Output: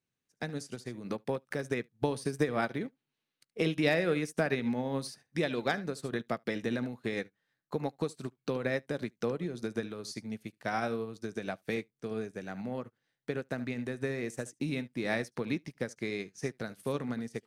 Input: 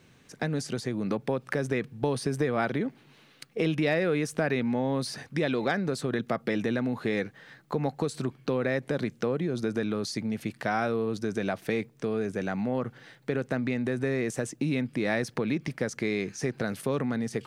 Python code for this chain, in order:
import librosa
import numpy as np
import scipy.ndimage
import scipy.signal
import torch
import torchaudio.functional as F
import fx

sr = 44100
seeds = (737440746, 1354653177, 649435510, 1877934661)

p1 = fx.high_shelf(x, sr, hz=4500.0, db=8.5)
p2 = p1 + fx.room_early_taps(p1, sr, ms=(17, 73), db=(-17.5, -14.0), dry=0)
y = fx.upward_expand(p2, sr, threshold_db=-44.0, expansion=2.5)